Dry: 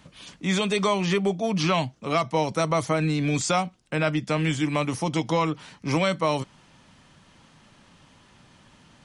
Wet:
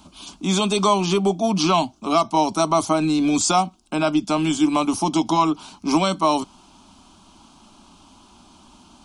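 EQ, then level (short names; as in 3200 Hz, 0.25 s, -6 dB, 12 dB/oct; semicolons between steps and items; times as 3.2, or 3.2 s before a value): fixed phaser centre 500 Hz, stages 6; +8.5 dB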